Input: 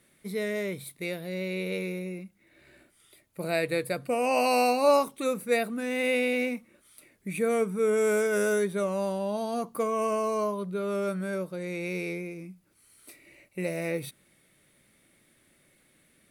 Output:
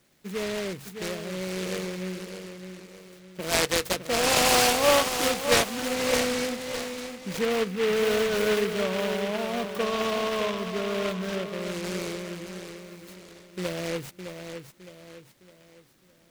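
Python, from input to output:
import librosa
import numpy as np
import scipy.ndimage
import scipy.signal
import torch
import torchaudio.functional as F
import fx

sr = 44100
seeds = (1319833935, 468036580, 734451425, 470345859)

y = fx.weighting(x, sr, curve='D', at=(3.4, 5.8))
y = fx.echo_feedback(y, sr, ms=611, feedback_pct=40, wet_db=-8)
y = fx.noise_mod_delay(y, sr, seeds[0], noise_hz=1900.0, depth_ms=0.11)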